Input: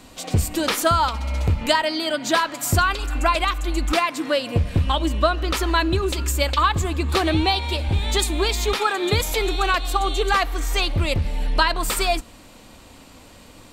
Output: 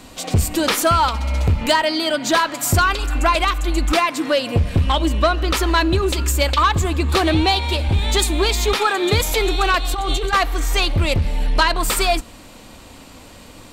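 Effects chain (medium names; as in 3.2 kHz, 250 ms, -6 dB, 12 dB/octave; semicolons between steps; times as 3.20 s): saturation -12 dBFS, distortion -19 dB; 9.93–10.33 s: compressor with a negative ratio -24 dBFS, ratio -0.5; trim +4.5 dB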